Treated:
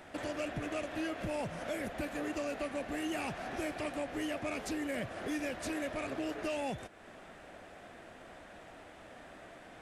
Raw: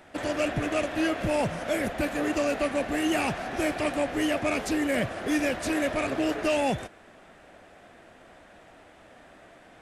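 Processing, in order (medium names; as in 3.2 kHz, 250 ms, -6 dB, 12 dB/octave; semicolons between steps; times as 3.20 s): compression 2:1, threshold -43 dBFS, peak gain reduction 11.5 dB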